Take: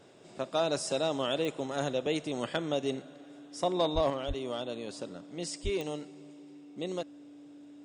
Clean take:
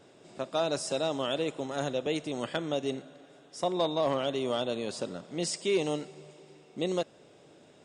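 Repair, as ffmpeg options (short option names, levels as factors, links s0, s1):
-filter_complex "[0:a]adeclick=t=4,bandreject=f=290:w=30,asplit=3[s0][s1][s2];[s0]afade=t=out:st=3.94:d=0.02[s3];[s1]highpass=f=140:w=0.5412,highpass=f=140:w=1.3066,afade=t=in:st=3.94:d=0.02,afade=t=out:st=4.06:d=0.02[s4];[s2]afade=t=in:st=4.06:d=0.02[s5];[s3][s4][s5]amix=inputs=3:normalize=0,asplit=3[s6][s7][s8];[s6]afade=t=out:st=4.27:d=0.02[s9];[s7]highpass=f=140:w=0.5412,highpass=f=140:w=1.3066,afade=t=in:st=4.27:d=0.02,afade=t=out:st=4.39:d=0.02[s10];[s8]afade=t=in:st=4.39:d=0.02[s11];[s9][s10][s11]amix=inputs=3:normalize=0,asplit=3[s12][s13][s14];[s12]afade=t=out:st=5.63:d=0.02[s15];[s13]highpass=f=140:w=0.5412,highpass=f=140:w=1.3066,afade=t=in:st=5.63:d=0.02,afade=t=out:st=5.75:d=0.02[s16];[s14]afade=t=in:st=5.75:d=0.02[s17];[s15][s16][s17]amix=inputs=3:normalize=0,asetnsamples=n=441:p=0,asendcmd='4.1 volume volume 5.5dB',volume=1"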